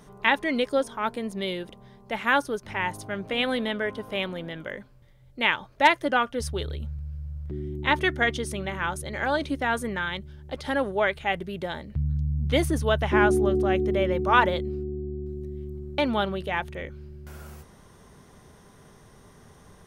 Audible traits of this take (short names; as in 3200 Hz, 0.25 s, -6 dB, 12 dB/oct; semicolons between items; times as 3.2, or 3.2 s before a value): noise floor -53 dBFS; spectral tilt -3.5 dB/oct